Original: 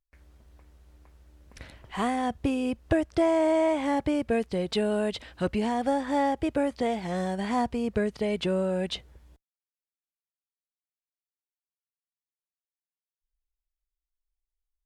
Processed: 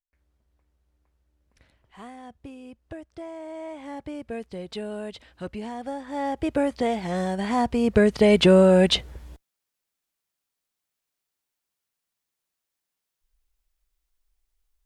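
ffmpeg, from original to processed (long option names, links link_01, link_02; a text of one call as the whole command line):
ffmpeg -i in.wav -af "volume=12dB,afade=type=in:start_time=3.46:duration=1.03:silence=0.398107,afade=type=in:start_time=6.11:duration=0.45:silence=0.316228,afade=type=in:start_time=7.58:duration=0.78:silence=0.354813" out.wav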